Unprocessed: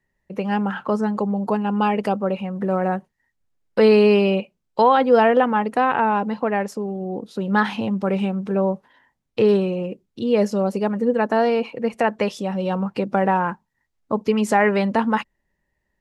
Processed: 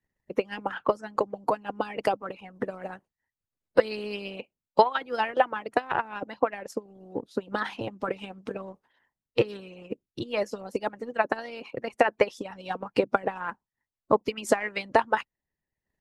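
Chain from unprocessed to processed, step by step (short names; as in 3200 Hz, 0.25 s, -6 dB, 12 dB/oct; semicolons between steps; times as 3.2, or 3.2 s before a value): harmonic-percussive split harmonic -18 dB; transient shaper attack +6 dB, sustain -6 dB; gain -2.5 dB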